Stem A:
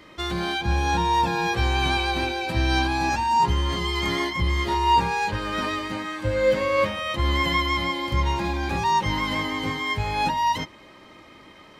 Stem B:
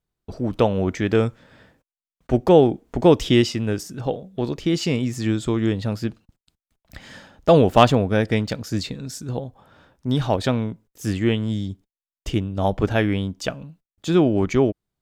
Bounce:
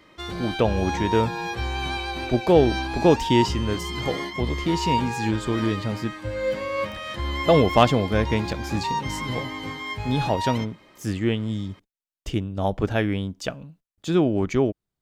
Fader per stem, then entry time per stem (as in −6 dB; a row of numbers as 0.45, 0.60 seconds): −5.5, −3.0 decibels; 0.00, 0.00 seconds